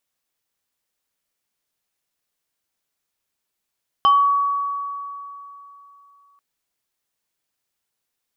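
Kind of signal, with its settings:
two-operator FM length 2.34 s, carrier 1,130 Hz, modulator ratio 1.72, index 0.54, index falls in 0.37 s exponential, decay 3.13 s, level −10 dB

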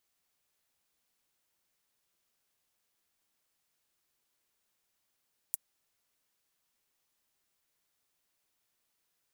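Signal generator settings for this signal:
closed synth hi-hat, high-pass 8,900 Hz, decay 0.03 s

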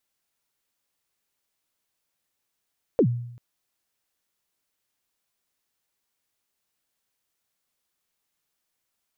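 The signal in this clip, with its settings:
synth kick length 0.39 s, from 550 Hz, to 120 Hz, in 77 ms, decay 0.75 s, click off, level −13 dB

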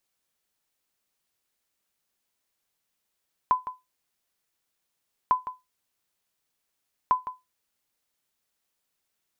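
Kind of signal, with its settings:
ping with an echo 1,010 Hz, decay 0.20 s, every 1.80 s, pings 3, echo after 0.16 s, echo −13 dB −12.5 dBFS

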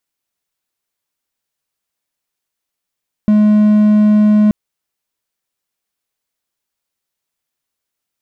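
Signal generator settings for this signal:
tone triangle 211 Hz −4.5 dBFS 1.23 s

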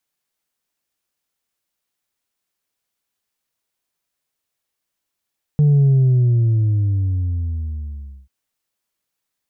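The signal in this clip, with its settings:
bass drop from 150 Hz, over 2.69 s, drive 2 dB, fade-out 2.45 s, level −10.5 dB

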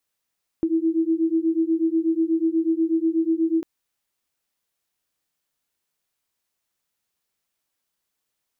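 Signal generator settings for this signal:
two tones that beat 322 Hz, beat 8.2 Hz, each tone −21.5 dBFS 3.00 s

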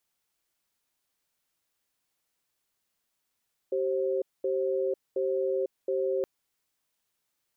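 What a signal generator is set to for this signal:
tone pair in a cadence 385 Hz, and 531 Hz, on 0.50 s, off 0.22 s, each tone −28 dBFS 2.52 s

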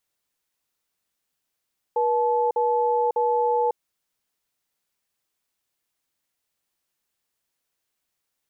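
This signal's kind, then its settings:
tone pair in a cadence 481 Hz, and 866 Hz, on 0.55 s, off 0.05 s, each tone −21.5 dBFS 1.78 s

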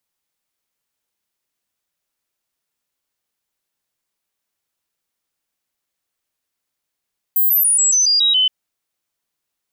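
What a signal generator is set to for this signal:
stepped sweep 15,300 Hz down, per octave 3, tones 8, 0.14 s, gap 0.00 s −11.5 dBFS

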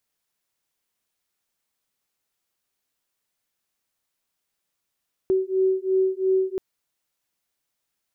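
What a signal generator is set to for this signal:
two tones that beat 377 Hz, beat 2.9 Hz, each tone −22 dBFS 1.28 s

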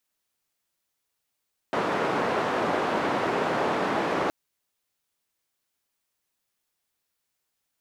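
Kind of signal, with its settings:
band-limited noise 210–960 Hz, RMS −26 dBFS 2.57 s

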